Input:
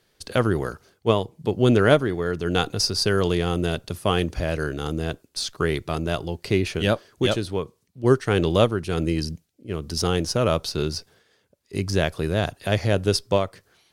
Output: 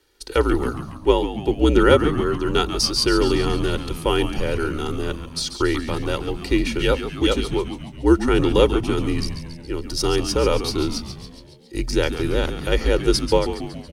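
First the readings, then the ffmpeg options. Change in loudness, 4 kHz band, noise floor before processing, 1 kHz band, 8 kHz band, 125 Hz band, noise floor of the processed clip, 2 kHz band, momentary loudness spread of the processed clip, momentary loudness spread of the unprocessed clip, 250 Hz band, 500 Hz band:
+2.5 dB, +3.0 dB, −67 dBFS, +2.5 dB, +2.5 dB, −1.5 dB, −41 dBFS, +1.5 dB, 11 LU, 10 LU, +3.5 dB, +2.5 dB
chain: -filter_complex "[0:a]aecho=1:1:2.1:0.78,afreqshift=-57,asplit=8[link_01][link_02][link_03][link_04][link_05][link_06][link_07][link_08];[link_02]adelay=139,afreqshift=-92,volume=-10dB[link_09];[link_03]adelay=278,afreqshift=-184,volume=-14.3dB[link_10];[link_04]adelay=417,afreqshift=-276,volume=-18.6dB[link_11];[link_05]adelay=556,afreqshift=-368,volume=-22.9dB[link_12];[link_06]adelay=695,afreqshift=-460,volume=-27.2dB[link_13];[link_07]adelay=834,afreqshift=-552,volume=-31.5dB[link_14];[link_08]adelay=973,afreqshift=-644,volume=-35.8dB[link_15];[link_01][link_09][link_10][link_11][link_12][link_13][link_14][link_15]amix=inputs=8:normalize=0"

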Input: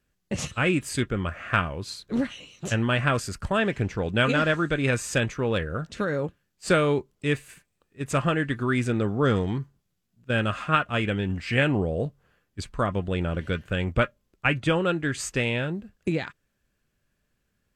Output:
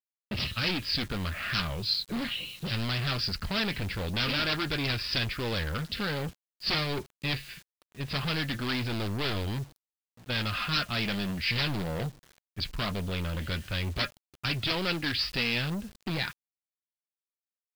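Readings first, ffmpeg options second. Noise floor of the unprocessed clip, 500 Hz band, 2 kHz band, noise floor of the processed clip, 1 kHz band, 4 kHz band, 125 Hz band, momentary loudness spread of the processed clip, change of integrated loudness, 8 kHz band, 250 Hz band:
−76 dBFS, −11.0 dB, −4.5 dB, below −85 dBFS, −7.5 dB, +5.5 dB, −5.5 dB, 8 LU, −4.5 dB, −10.0 dB, −7.0 dB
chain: -filter_complex "[0:a]aresample=16000,aeval=exprs='0.1*(abs(mod(val(0)/0.1+3,4)-2)-1)':channel_layout=same,aresample=44100,bass=frequency=250:gain=9,treble=frequency=4000:gain=-8,asplit=2[link_01][link_02];[link_02]asoftclip=type=hard:threshold=-27.5dB,volume=-6dB[link_03];[link_01][link_03]amix=inputs=2:normalize=0,flanger=delay=2.9:depth=2.8:regen=-60:speed=0.21:shape=sinusoidal,alimiter=limit=-20dB:level=0:latency=1:release=35,aeval=exprs='0.1*(cos(1*acos(clip(val(0)/0.1,-1,1)))-cos(1*PI/2))+0.0126*(cos(5*acos(clip(val(0)/0.1,-1,1)))-cos(5*PI/2))+0.00398*(cos(8*acos(clip(val(0)/0.1,-1,1)))-cos(8*PI/2))':channel_layout=same,crystalizer=i=7:c=0,aresample=11025,aresample=44100,acrusher=bits=7:mix=0:aa=0.000001,adynamicequalizer=threshold=0.01:dfrequency=3000:dqfactor=0.7:tfrequency=3000:tqfactor=0.7:attack=5:release=100:ratio=0.375:range=3.5:mode=boostabove:tftype=highshelf,volume=-6.5dB"

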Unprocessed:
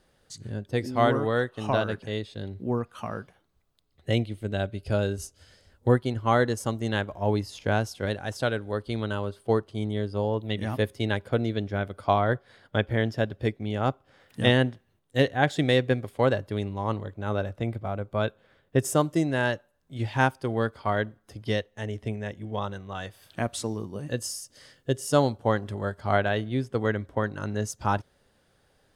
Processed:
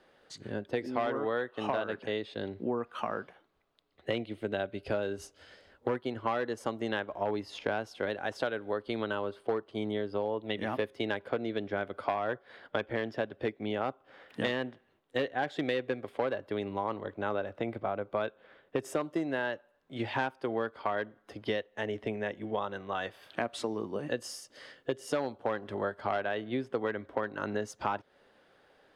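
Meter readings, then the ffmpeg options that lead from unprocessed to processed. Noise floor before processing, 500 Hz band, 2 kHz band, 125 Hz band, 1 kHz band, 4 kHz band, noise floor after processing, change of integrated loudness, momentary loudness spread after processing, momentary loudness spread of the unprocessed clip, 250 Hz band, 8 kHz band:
−67 dBFS, −5.0 dB, −5.5 dB, −16.5 dB, −5.5 dB, −7.0 dB, −68 dBFS, −7.0 dB, 5 LU, 11 LU, −7.5 dB, below −10 dB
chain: -filter_complex "[0:a]asoftclip=type=hard:threshold=-16.5dB,acrossover=split=240 3800:gain=0.141 1 0.158[link_01][link_02][link_03];[link_01][link_02][link_03]amix=inputs=3:normalize=0,acompressor=threshold=-34dB:ratio=5,volume=5dB"

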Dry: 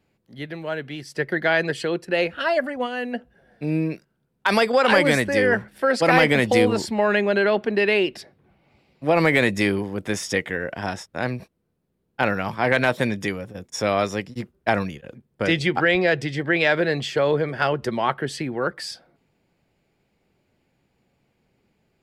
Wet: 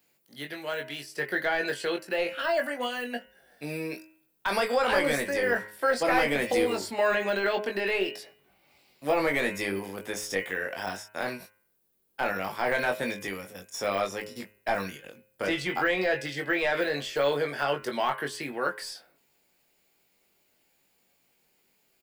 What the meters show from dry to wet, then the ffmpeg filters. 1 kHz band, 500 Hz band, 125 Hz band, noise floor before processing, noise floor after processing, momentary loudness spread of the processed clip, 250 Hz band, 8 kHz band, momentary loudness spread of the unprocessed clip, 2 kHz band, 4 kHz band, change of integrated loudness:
−5.5 dB, −6.5 dB, −15.0 dB, −72 dBFS, −70 dBFS, 12 LU, −10.0 dB, −3.5 dB, 14 LU, −6.5 dB, −6.0 dB, −7.0 dB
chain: -filter_complex "[0:a]aemphasis=mode=production:type=riaa,bandreject=frequency=105.3:width_type=h:width=4,bandreject=frequency=210.6:width_type=h:width=4,bandreject=frequency=315.9:width_type=h:width=4,bandreject=frequency=421.2:width_type=h:width=4,bandreject=frequency=526.5:width_type=h:width=4,bandreject=frequency=631.8:width_type=h:width=4,bandreject=frequency=737.1:width_type=h:width=4,bandreject=frequency=842.4:width_type=h:width=4,bandreject=frequency=947.7:width_type=h:width=4,bandreject=frequency=1053:width_type=h:width=4,bandreject=frequency=1158.3:width_type=h:width=4,bandreject=frequency=1263.6:width_type=h:width=4,bandreject=frequency=1368.9:width_type=h:width=4,bandreject=frequency=1474.2:width_type=h:width=4,bandreject=frequency=1579.5:width_type=h:width=4,bandreject=frequency=1684.8:width_type=h:width=4,bandreject=frequency=1790.1:width_type=h:width=4,bandreject=frequency=1895.4:width_type=h:width=4,bandreject=frequency=2000.7:width_type=h:width=4,bandreject=frequency=2106:width_type=h:width=4,bandreject=frequency=2211.3:width_type=h:width=4,bandreject=frequency=2316.6:width_type=h:width=4,bandreject=frequency=2421.9:width_type=h:width=4,bandreject=frequency=2527.2:width_type=h:width=4,bandreject=frequency=2632.5:width_type=h:width=4,bandreject=frequency=2737.8:width_type=h:width=4,bandreject=frequency=2843.1:width_type=h:width=4,bandreject=frequency=2948.4:width_type=h:width=4,deesser=0.9,asubboost=boost=3:cutoff=57,asplit=2[link_01][link_02];[link_02]adelay=21,volume=-5dB[link_03];[link_01][link_03]amix=inputs=2:normalize=0,volume=-3dB"

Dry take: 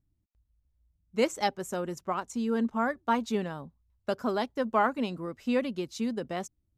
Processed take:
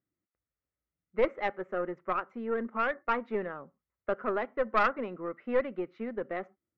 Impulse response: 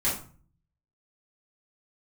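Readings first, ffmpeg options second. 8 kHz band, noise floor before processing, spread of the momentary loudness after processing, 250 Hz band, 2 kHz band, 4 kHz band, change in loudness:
below −25 dB, −76 dBFS, 10 LU, −7.5 dB, +1.5 dB, −9.5 dB, −1.5 dB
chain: -filter_complex "[0:a]highpass=250,equalizer=frequency=260:width_type=q:width=4:gain=-4,equalizer=frequency=370:width_type=q:width=4:gain=3,equalizer=frequency=520:width_type=q:width=4:gain=5,equalizer=frequency=900:width_type=q:width=4:gain=-4,equalizer=frequency=1300:width_type=q:width=4:gain=8,equalizer=frequency=2000:width_type=q:width=4:gain=8,lowpass=frequency=2100:width=0.5412,lowpass=frequency=2100:width=1.3066,asplit=2[link_01][link_02];[1:a]atrim=start_sample=2205,atrim=end_sample=6174[link_03];[link_02][link_03]afir=irnorm=-1:irlink=0,volume=-31dB[link_04];[link_01][link_04]amix=inputs=2:normalize=0,aeval=exprs='(tanh(6.31*val(0)+0.55)-tanh(0.55))/6.31':channel_layout=same"

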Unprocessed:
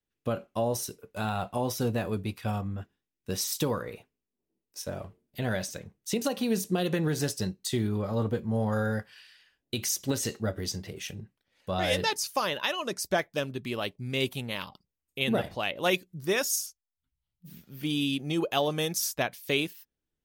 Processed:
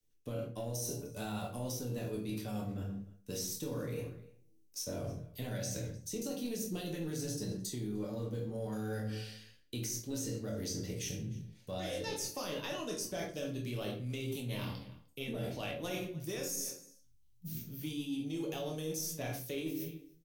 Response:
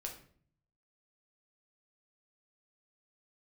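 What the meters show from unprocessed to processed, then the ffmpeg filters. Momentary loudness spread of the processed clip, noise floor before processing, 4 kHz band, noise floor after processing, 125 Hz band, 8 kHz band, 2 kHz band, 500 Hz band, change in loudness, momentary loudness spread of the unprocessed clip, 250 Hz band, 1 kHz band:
6 LU, below −85 dBFS, −11.0 dB, −64 dBFS, −6.5 dB, −6.0 dB, −13.5 dB, −9.0 dB, −9.0 dB, 11 LU, −7.5 dB, −13.5 dB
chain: -filter_complex "[0:a]equalizer=frequency=6100:width=4.9:gain=5.5,bandreject=frequency=50:width_type=h:width=6,bandreject=frequency=100:width_type=h:width=6,bandreject=frequency=150:width_type=h:width=6,bandreject=frequency=200:width_type=h:width=6,asplit=2[link_01][link_02];[link_02]adelay=25,volume=-7dB[link_03];[link_01][link_03]amix=inputs=2:normalize=0,acrossover=split=180|1800[link_04][link_05][link_06];[link_04]acompressor=threshold=-46dB:ratio=4[link_07];[link_05]acompressor=threshold=-29dB:ratio=4[link_08];[link_06]acompressor=threshold=-38dB:ratio=4[link_09];[link_07][link_08][link_09]amix=inputs=3:normalize=0,asplit=2[link_10][link_11];[link_11]adelay=303.2,volume=-23dB,highshelf=frequency=4000:gain=-6.82[link_12];[link_10][link_12]amix=inputs=2:normalize=0,asplit=2[link_13][link_14];[link_14]asoftclip=type=tanh:threshold=-31dB,volume=-8.5dB[link_15];[link_13][link_15]amix=inputs=2:normalize=0,equalizer=frequency=1200:width=0.44:gain=-13[link_16];[1:a]atrim=start_sample=2205,afade=type=out:start_time=0.34:duration=0.01,atrim=end_sample=15435,asetrate=41013,aresample=44100[link_17];[link_16][link_17]afir=irnorm=-1:irlink=0,areverse,acompressor=threshold=-44dB:ratio=6,areverse,volume=8dB"

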